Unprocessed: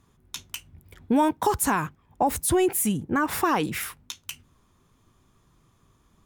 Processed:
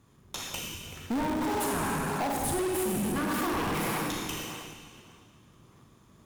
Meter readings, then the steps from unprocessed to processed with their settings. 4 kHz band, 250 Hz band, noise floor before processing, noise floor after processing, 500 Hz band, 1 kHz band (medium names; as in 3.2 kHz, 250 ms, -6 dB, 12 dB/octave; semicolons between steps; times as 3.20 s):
0.0 dB, -4.5 dB, -64 dBFS, -59 dBFS, -5.0 dB, -6.0 dB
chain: high-pass 78 Hz; algorithmic reverb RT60 2.1 s, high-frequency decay 0.95×, pre-delay 0 ms, DRR -3 dB; in parallel at -4.5 dB: decimation with a swept rate 37×, swing 160% 1.7 Hz; on the sum: compression, threshold -18 dBFS, peak gain reduction 8.5 dB; saturation -25 dBFS, distortion -8 dB; trim -1.5 dB